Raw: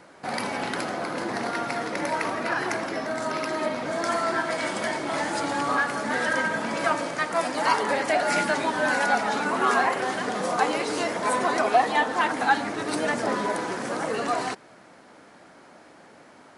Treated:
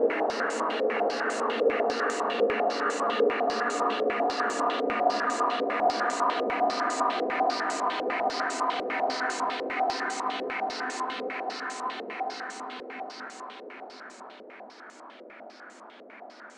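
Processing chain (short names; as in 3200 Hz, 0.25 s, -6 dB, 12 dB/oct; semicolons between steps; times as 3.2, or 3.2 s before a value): steep high-pass 210 Hz 96 dB/oct; compressor 3:1, threshold -28 dBFS, peak gain reduction 10.5 dB; Paulstretch 23×, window 0.50 s, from 14.08; stepped low-pass 10 Hz 500–7200 Hz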